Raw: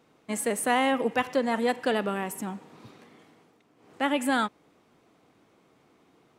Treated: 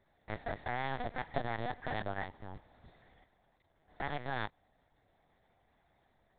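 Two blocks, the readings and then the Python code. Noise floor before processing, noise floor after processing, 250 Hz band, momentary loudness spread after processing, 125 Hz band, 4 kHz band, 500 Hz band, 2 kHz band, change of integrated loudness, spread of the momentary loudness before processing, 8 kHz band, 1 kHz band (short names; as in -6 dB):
-64 dBFS, -74 dBFS, -17.5 dB, 9 LU, +0.5 dB, -14.0 dB, -14.0 dB, -10.0 dB, -12.0 dB, 11 LU, under -40 dB, -10.5 dB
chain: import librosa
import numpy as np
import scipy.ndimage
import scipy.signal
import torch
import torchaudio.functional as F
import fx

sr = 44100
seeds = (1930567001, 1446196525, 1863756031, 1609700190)

y = fx.cycle_switch(x, sr, every=2, mode='muted')
y = fx.peak_eq(y, sr, hz=69.0, db=9.0, octaves=0.54)
y = fx.fixed_phaser(y, sr, hz=1800.0, stages=8)
y = fx.level_steps(y, sr, step_db=9)
y = fx.lpc_vocoder(y, sr, seeds[0], excitation='pitch_kept', order=8)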